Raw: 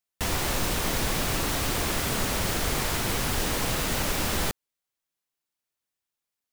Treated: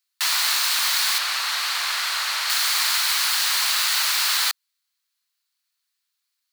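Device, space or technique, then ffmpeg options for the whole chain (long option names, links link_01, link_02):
headphones lying on a table: -filter_complex "[0:a]highpass=frequency=1100:width=0.5412,highpass=frequency=1100:width=1.3066,equalizer=frequency=4300:width_type=o:width=0.36:gain=9.5,asettb=1/sr,asplit=3[link_01][link_02][link_03];[link_01]atrim=end=1.184[link_04];[link_02]atrim=start=1.18:end=2.5,asetpts=PTS-STARTPTS,afade=type=in:duration=0.004:curve=qsin,afade=type=out:start_time=1.316:duration=0.004:curve=qsin,aemphasis=mode=reproduction:type=cd[link_05];[link_03]atrim=start=2.496[link_06];[link_04][link_05]acrossfade=duration=0.004:curve1=hsin:curve2=qsin[link_07];[link_07][link_06]acrossfade=duration=0.004:curve1=qsin:curve2=hsin,volume=7.5dB"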